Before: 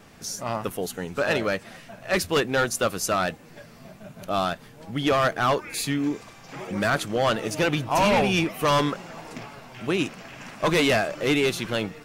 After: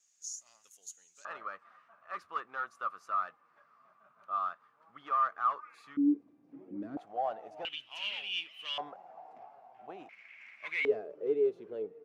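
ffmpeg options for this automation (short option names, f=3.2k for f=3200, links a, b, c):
-af "asetnsamples=n=441:p=0,asendcmd='1.25 bandpass f 1200;5.97 bandpass f 290;6.97 bandpass f 740;7.65 bandpass f 3000;8.78 bandpass f 750;10.09 bandpass f 2200;10.85 bandpass f 430',bandpass=f=6.7k:t=q:w=11:csg=0"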